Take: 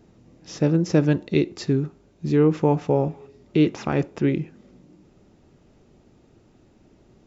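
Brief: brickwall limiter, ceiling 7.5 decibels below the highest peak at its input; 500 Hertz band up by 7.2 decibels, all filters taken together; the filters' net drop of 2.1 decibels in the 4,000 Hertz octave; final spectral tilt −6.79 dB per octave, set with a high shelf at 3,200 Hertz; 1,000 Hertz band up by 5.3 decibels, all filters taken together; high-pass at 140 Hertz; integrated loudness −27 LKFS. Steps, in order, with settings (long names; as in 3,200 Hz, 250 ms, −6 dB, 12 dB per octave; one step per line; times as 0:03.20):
high-pass filter 140 Hz
parametric band 500 Hz +8 dB
parametric band 1,000 Hz +3.5 dB
high-shelf EQ 3,200 Hz +4 dB
parametric band 4,000 Hz −6.5 dB
level −5 dB
brickwall limiter −14.5 dBFS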